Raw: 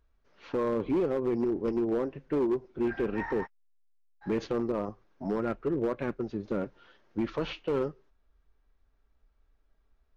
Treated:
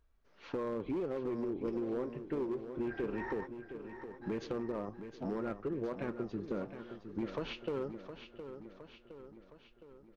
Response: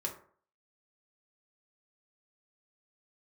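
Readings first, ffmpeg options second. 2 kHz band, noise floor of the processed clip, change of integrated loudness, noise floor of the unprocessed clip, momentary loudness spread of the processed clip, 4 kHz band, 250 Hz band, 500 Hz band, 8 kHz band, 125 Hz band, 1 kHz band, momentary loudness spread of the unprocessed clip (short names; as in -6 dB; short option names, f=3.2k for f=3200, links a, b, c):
-6.0 dB, -64 dBFS, -8.0 dB, -70 dBFS, 17 LU, -4.5 dB, -7.0 dB, -7.5 dB, n/a, -6.0 dB, -7.0 dB, 8 LU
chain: -filter_complex "[0:a]acompressor=threshold=-32dB:ratio=4,asplit=2[a][b];[b]aecho=0:1:714|1428|2142|2856|3570|4284:0.316|0.174|0.0957|0.0526|0.0289|0.0159[c];[a][c]amix=inputs=2:normalize=0,volume=-2.5dB"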